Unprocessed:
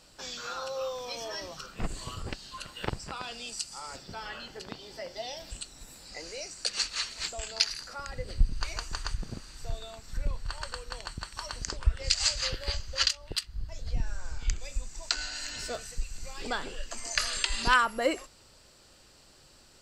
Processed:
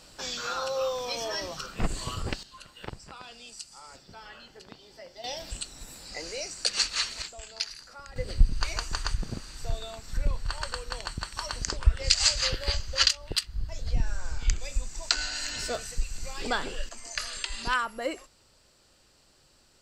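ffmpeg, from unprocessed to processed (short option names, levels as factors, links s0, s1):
-af "asetnsamples=n=441:p=0,asendcmd='2.43 volume volume -6.5dB;5.24 volume volume 4dB;7.22 volume volume -6dB;8.16 volume volume 4dB;16.89 volume volume -4.5dB',volume=1.78"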